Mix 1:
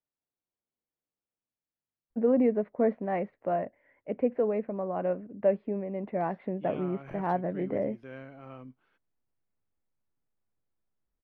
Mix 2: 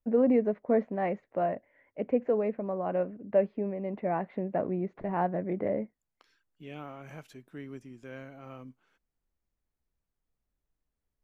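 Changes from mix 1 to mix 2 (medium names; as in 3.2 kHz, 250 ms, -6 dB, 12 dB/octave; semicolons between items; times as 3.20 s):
first voice: entry -2.10 s; master: remove boxcar filter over 6 samples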